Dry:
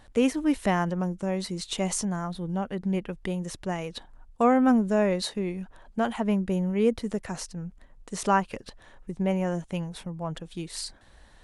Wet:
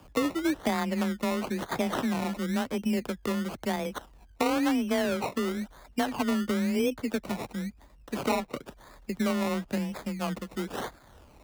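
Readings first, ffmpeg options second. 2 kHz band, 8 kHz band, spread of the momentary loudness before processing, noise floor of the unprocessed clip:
+1.0 dB, -5.0 dB, 15 LU, -54 dBFS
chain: -filter_complex "[0:a]acrusher=samples=22:mix=1:aa=0.000001:lfo=1:lforange=13.2:lforate=0.98,acrossover=split=93|3900[s0][s1][s2];[s0]acompressor=threshold=0.00141:ratio=4[s3];[s1]acompressor=threshold=0.0447:ratio=4[s4];[s2]acompressor=threshold=0.00562:ratio=4[s5];[s3][s4][s5]amix=inputs=3:normalize=0,afreqshift=23,volume=1.33"

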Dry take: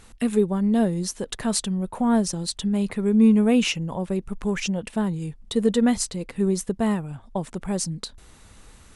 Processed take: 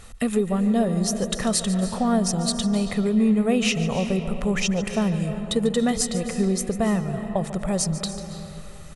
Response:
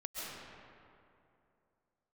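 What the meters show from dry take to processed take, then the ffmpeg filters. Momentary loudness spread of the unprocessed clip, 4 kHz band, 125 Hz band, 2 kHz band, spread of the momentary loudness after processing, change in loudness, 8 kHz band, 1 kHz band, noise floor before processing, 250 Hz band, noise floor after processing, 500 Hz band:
11 LU, +2.5 dB, +2.5 dB, +2.5 dB, 6 LU, +0.5 dB, +3.0 dB, +2.0 dB, -50 dBFS, -0.5 dB, -38 dBFS, +1.0 dB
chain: -filter_complex "[0:a]aecho=1:1:1.6:0.43,acompressor=threshold=0.0708:ratio=2.5,asplit=2[s0][s1];[1:a]atrim=start_sample=2205,adelay=145[s2];[s1][s2]afir=irnorm=-1:irlink=0,volume=0.355[s3];[s0][s3]amix=inputs=2:normalize=0,volume=1.5"

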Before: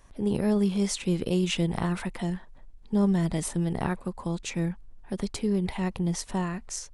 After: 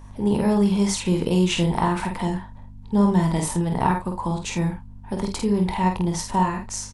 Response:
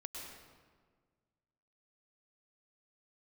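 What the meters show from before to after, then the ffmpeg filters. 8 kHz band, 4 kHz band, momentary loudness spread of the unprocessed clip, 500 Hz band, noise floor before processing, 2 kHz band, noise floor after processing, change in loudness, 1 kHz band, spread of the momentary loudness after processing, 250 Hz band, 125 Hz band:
+5.0 dB, +5.0 dB, 9 LU, +5.0 dB, -49 dBFS, +5.5 dB, -41 dBFS, +6.0 dB, +13.0 dB, 8 LU, +5.5 dB, +5.5 dB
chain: -filter_complex "[0:a]equalizer=f=930:w=4.7:g=12.5,aeval=exprs='val(0)+0.00562*(sin(2*PI*50*n/s)+sin(2*PI*2*50*n/s)/2+sin(2*PI*3*50*n/s)/3+sin(2*PI*4*50*n/s)/4+sin(2*PI*5*50*n/s)/5)':c=same,asplit=2[s0][s1];[s1]aecho=0:1:23|49|80:0.266|0.596|0.188[s2];[s0][s2]amix=inputs=2:normalize=0,volume=1.5"

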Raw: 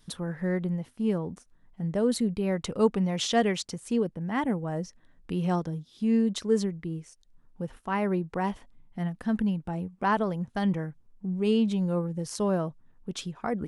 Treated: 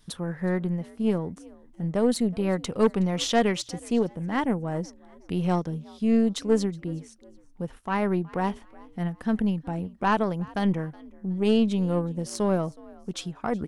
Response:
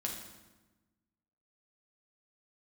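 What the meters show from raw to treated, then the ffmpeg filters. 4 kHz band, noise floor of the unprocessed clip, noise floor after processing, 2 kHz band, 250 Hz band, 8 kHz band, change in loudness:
+2.0 dB, -60 dBFS, -53 dBFS, +2.0 dB, +2.0 dB, +1.5 dB, +2.0 dB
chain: -filter_complex "[0:a]aeval=exprs='0.299*(cos(1*acos(clip(val(0)/0.299,-1,1)))-cos(1*PI/2))+0.0473*(cos(4*acos(clip(val(0)/0.299,-1,1)))-cos(4*PI/2))+0.0422*(cos(5*acos(clip(val(0)/0.299,-1,1)))-cos(5*PI/2))+0.00841*(cos(6*acos(clip(val(0)/0.299,-1,1)))-cos(6*PI/2))+0.0237*(cos(7*acos(clip(val(0)/0.299,-1,1)))-cos(7*PI/2))':c=same,asplit=3[s0][s1][s2];[s1]adelay=369,afreqshift=59,volume=0.0708[s3];[s2]adelay=738,afreqshift=118,volume=0.0234[s4];[s0][s3][s4]amix=inputs=3:normalize=0"

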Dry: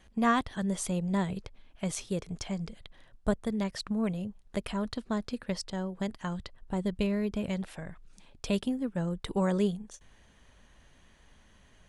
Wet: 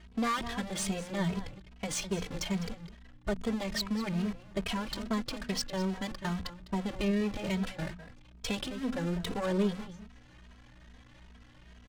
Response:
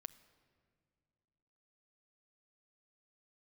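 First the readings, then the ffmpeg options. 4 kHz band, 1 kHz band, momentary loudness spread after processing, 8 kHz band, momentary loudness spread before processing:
+4.5 dB, -2.5 dB, 11 LU, +2.0 dB, 12 LU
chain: -filter_complex "[0:a]aeval=exprs='val(0)+0.5*0.0141*sgn(val(0))':c=same,agate=range=0.112:threshold=0.0158:ratio=16:detection=peak,highshelf=f=2100:g=9,bandreject=f=60:t=h:w=6,bandreject=f=120:t=h:w=6,bandreject=f=180:t=h:w=6,bandreject=f=240:t=h:w=6,asplit=2[s0][s1];[s1]acompressor=threshold=0.0158:ratio=6,volume=1[s2];[s0][s2]amix=inputs=2:normalize=0,aeval=exprs='val(0)+0.00251*(sin(2*PI*60*n/s)+sin(2*PI*2*60*n/s)/2+sin(2*PI*3*60*n/s)/3+sin(2*PI*4*60*n/s)/4+sin(2*PI*5*60*n/s)/5)':c=same,asoftclip=type=tanh:threshold=0.0708,adynamicsmooth=sensitivity=5:basefreq=2800,asplit=2[s3][s4];[s4]adelay=204.1,volume=0.251,highshelf=f=4000:g=-4.59[s5];[s3][s5]amix=inputs=2:normalize=0,asplit=2[s6][s7];[s7]adelay=2.8,afreqshift=2.4[s8];[s6][s8]amix=inputs=2:normalize=1"

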